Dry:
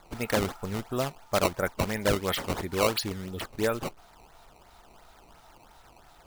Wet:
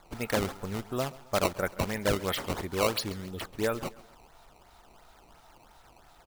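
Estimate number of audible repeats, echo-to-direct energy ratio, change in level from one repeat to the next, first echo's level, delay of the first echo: 2, -19.0 dB, -7.5 dB, -20.0 dB, 135 ms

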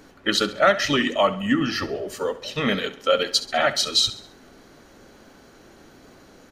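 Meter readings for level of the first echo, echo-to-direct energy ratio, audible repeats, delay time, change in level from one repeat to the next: -15.5 dB, -14.5 dB, 3, 67 ms, -7.0 dB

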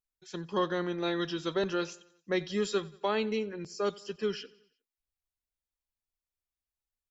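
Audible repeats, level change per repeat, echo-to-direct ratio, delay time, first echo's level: 3, -5.5 dB, -21.0 dB, 90 ms, -22.5 dB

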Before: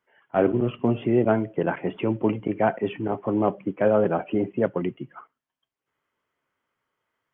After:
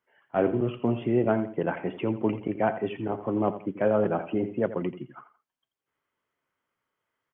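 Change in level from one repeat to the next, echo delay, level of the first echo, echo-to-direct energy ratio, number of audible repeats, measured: -11.0 dB, 85 ms, -13.0 dB, -12.5 dB, 2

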